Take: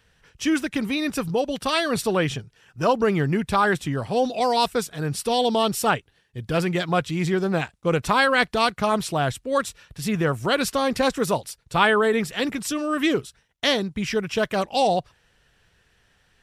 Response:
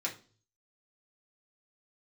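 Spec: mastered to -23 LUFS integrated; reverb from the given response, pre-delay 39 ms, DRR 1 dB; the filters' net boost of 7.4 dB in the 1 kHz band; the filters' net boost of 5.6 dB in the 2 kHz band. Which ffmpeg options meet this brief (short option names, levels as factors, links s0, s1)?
-filter_complex "[0:a]equalizer=f=1000:t=o:g=8.5,equalizer=f=2000:t=o:g=4,asplit=2[s0][s1];[1:a]atrim=start_sample=2205,adelay=39[s2];[s1][s2]afir=irnorm=-1:irlink=0,volume=0.596[s3];[s0][s3]amix=inputs=2:normalize=0,volume=0.501"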